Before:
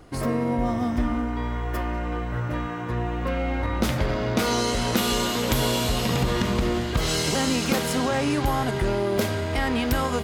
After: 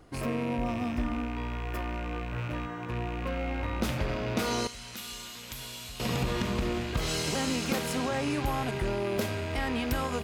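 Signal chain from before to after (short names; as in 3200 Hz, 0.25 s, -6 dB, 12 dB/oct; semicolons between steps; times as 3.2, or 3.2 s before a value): rattling part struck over -30 dBFS, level -25 dBFS; 4.67–6 passive tone stack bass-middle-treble 5-5-5; gain -6.5 dB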